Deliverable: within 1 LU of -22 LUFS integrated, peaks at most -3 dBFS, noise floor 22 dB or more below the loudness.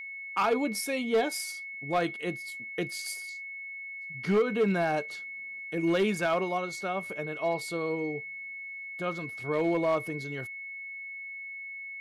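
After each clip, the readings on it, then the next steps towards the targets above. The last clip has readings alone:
clipped 0.7%; flat tops at -19.5 dBFS; steady tone 2200 Hz; tone level -38 dBFS; loudness -31.5 LUFS; peak -19.5 dBFS; loudness target -22.0 LUFS
-> clip repair -19.5 dBFS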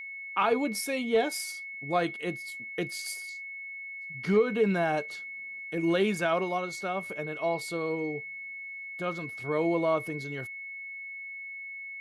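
clipped 0.0%; steady tone 2200 Hz; tone level -38 dBFS
-> notch 2200 Hz, Q 30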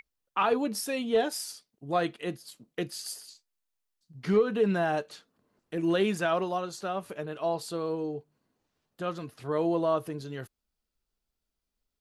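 steady tone none; loudness -30.5 LUFS; peak -14.0 dBFS; loudness target -22.0 LUFS
-> gain +8.5 dB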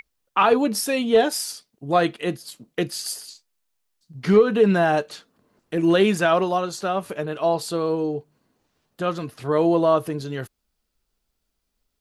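loudness -22.0 LUFS; peak -5.5 dBFS; noise floor -76 dBFS

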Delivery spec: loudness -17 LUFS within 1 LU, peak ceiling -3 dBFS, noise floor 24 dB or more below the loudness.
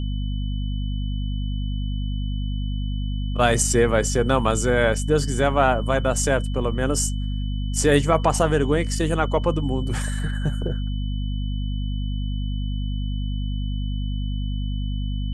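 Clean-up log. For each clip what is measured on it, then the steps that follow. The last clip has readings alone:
hum 50 Hz; harmonics up to 250 Hz; hum level -23 dBFS; steady tone 3000 Hz; tone level -42 dBFS; loudness -24.0 LUFS; peak -4.5 dBFS; loudness target -17.0 LUFS
-> notches 50/100/150/200/250 Hz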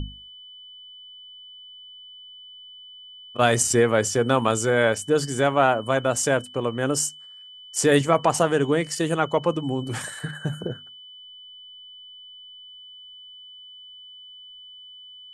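hum none; steady tone 3000 Hz; tone level -42 dBFS
-> notch 3000 Hz, Q 30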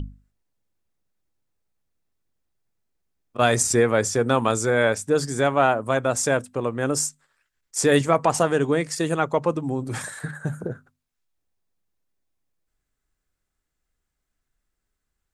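steady tone none; loudness -22.5 LUFS; peak -5.0 dBFS; loudness target -17.0 LUFS
-> gain +5.5 dB; limiter -3 dBFS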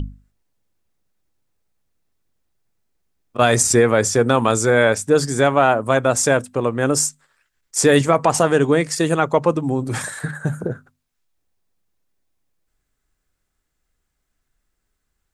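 loudness -17.5 LUFS; peak -3.0 dBFS; noise floor -75 dBFS

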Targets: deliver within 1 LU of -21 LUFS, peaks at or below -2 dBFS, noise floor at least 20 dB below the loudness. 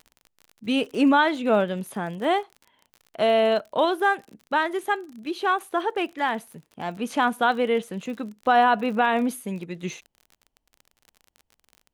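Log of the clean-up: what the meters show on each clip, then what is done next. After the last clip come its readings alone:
ticks 40/s; loudness -24.0 LUFS; peak -8.0 dBFS; loudness target -21.0 LUFS
-> de-click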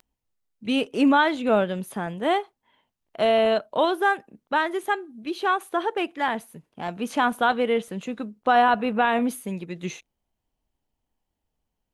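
ticks 0.084/s; loudness -24.0 LUFS; peak -8.0 dBFS; loudness target -21.0 LUFS
-> gain +3 dB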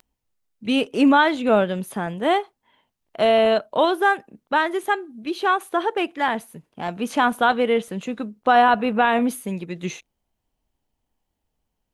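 loudness -21.0 LUFS; peak -5.0 dBFS; noise floor -79 dBFS

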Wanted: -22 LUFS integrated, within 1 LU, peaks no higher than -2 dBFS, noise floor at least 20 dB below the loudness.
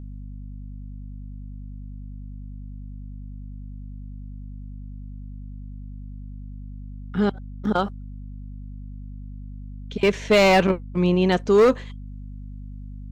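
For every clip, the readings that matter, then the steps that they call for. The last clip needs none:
clipped 0.5%; flat tops at -11.0 dBFS; hum 50 Hz; harmonics up to 250 Hz; hum level -34 dBFS; loudness -20.5 LUFS; peak -11.0 dBFS; loudness target -22.0 LUFS
-> clip repair -11 dBFS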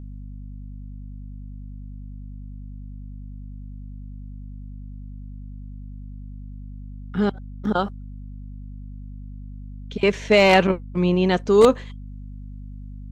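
clipped 0.0%; hum 50 Hz; harmonics up to 250 Hz; hum level -34 dBFS
-> de-hum 50 Hz, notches 5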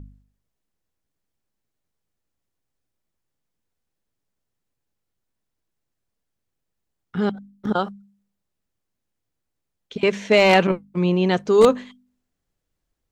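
hum none; loudness -19.5 LUFS; peak -2.0 dBFS; loudness target -22.0 LUFS
-> gain -2.5 dB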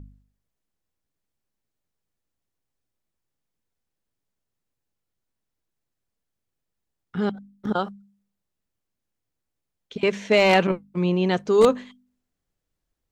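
loudness -22.0 LUFS; peak -4.5 dBFS; noise floor -82 dBFS

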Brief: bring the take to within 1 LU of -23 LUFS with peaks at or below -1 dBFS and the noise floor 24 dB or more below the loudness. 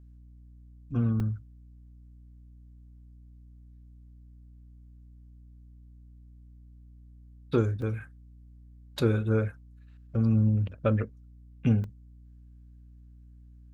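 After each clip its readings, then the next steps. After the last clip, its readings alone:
dropouts 3; longest dropout 2.0 ms; hum 60 Hz; harmonics up to 300 Hz; hum level -49 dBFS; loudness -28.5 LUFS; peak -11.5 dBFS; loudness target -23.0 LUFS
-> interpolate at 1.2/7.82/11.84, 2 ms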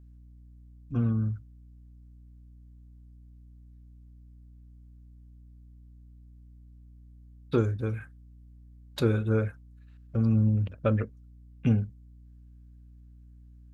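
dropouts 0; hum 60 Hz; harmonics up to 300 Hz; hum level -49 dBFS
-> de-hum 60 Hz, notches 5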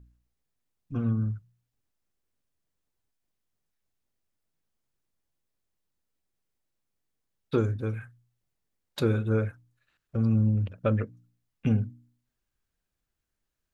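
hum none; loudness -29.0 LUFS; peak -12.0 dBFS; loudness target -23.0 LUFS
-> gain +6 dB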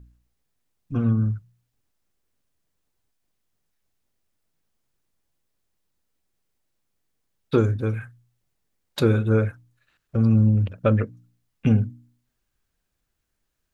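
loudness -23.0 LUFS; peak -6.0 dBFS; noise floor -77 dBFS

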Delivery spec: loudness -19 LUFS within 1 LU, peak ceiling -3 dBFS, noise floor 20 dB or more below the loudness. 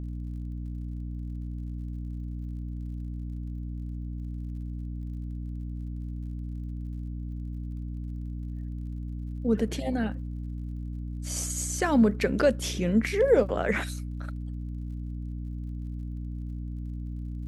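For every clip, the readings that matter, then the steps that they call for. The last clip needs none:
ticks 51/s; hum 60 Hz; harmonics up to 300 Hz; hum level -32 dBFS; loudness -31.5 LUFS; peak -10.5 dBFS; loudness target -19.0 LUFS
-> de-click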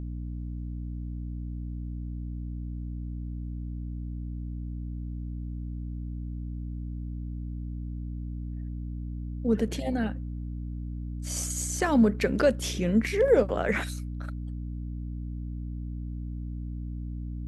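ticks 0/s; hum 60 Hz; harmonics up to 300 Hz; hum level -32 dBFS
-> de-hum 60 Hz, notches 5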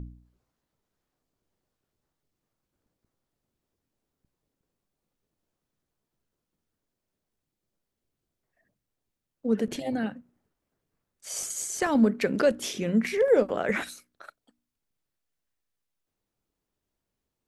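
hum none; loudness -26.5 LUFS; peak -11.0 dBFS; loudness target -19.0 LUFS
-> gain +7.5 dB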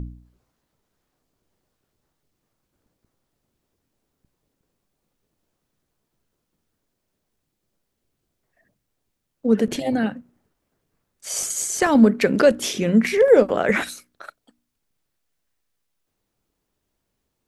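loudness -19.0 LUFS; peak -3.5 dBFS; noise floor -78 dBFS

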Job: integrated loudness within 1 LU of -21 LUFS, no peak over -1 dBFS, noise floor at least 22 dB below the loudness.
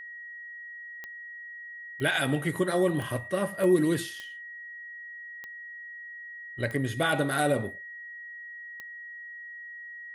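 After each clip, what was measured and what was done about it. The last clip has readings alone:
clicks 8; steady tone 1900 Hz; tone level -40 dBFS; loudness -31.5 LUFS; peak -12.0 dBFS; loudness target -21.0 LUFS
-> de-click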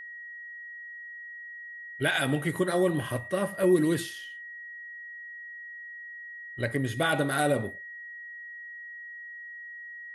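clicks 0; steady tone 1900 Hz; tone level -40 dBFS
-> notch 1900 Hz, Q 30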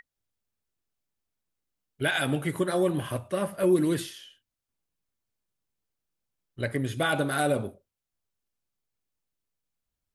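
steady tone none; loudness -27.5 LUFS; peak -12.5 dBFS; loudness target -21.0 LUFS
-> gain +6.5 dB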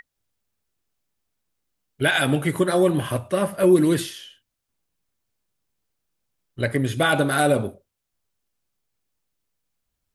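loudness -21.0 LUFS; peak -6.0 dBFS; noise floor -81 dBFS

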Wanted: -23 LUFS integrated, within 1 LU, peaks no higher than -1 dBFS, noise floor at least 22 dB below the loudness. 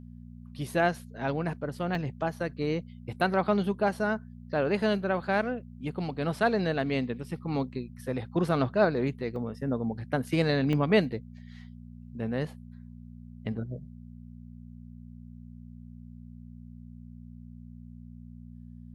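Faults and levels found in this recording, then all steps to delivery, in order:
dropouts 3; longest dropout 1.2 ms; hum 60 Hz; harmonics up to 240 Hz; hum level -43 dBFS; loudness -30.0 LUFS; peak -11.5 dBFS; loudness target -23.0 LUFS
-> interpolate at 1.95/9.36/10.73, 1.2 ms; de-hum 60 Hz, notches 4; gain +7 dB

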